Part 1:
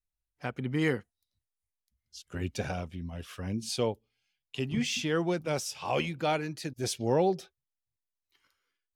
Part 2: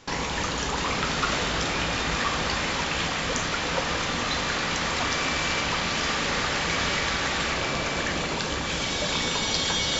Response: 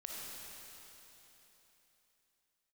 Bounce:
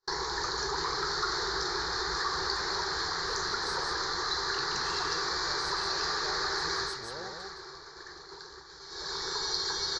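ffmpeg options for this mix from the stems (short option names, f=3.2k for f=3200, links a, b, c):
-filter_complex "[0:a]lowpass=f=8.2k:w=0.5412,lowpass=f=8.2k:w=1.3066,acompressor=threshold=-38dB:ratio=3,volume=-5dB,asplit=2[a][b];[b]volume=-3.5dB[c];[1:a]asoftclip=type=tanh:threshold=-17.5dB,firequalizer=gain_entry='entry(140,0);entry(230,-13);entry(380,15);entry(570,-11);entry(800,2);entry(1700,6);entry(2700,-25);entry(4200,13);entry(9100,-13)':delay=0.05:min_phase=1,volume=5dB,afade=t=out:st=6.76:d=0.23:silence=0.237137,afade=t=in:st=8.87:d=0.57:silence=0.316228[d];[c]aecho=0:1:173:1[e];[a][d][e]amix=inputs=3:normalize=0,agate=range=-33dB:threshold=-37dB:ratio=3:detection=peak,equalizer=f=100:t=o:w=0.67:g=-7,equalizer=f=250:t=o:w=0.67:g=-11,equalizer=f=1k:t=o:w=0.67:g=3,equalizer=f=10k:t=o:w=0.67:g=4,acompressor=threshold=-34dB:ratio=1.5"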